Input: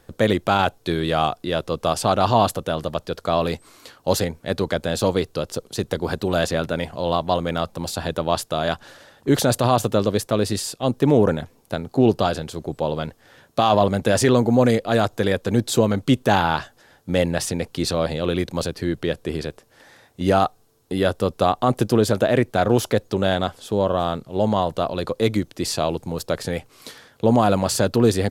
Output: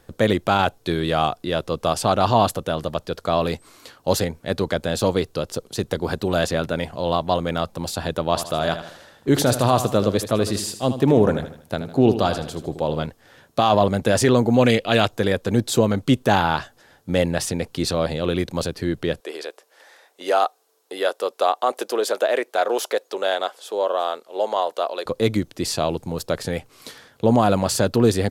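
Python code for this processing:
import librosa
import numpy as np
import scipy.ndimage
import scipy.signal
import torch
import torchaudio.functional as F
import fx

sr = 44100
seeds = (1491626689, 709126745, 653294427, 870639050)

y = fx.echo_feedback(x, sr, ms=78, feedback_pct=42, wet_db=-11.0, at=(8.28, 13.06))
y = fx.peak_eq(y, sr, hz=2800.0, db=12.5, octaves=0.83, at=(14.54, 15.11))
y = fx.highpass(y, sr, hz=420.0, slope=24, at=(19.2, 25.06))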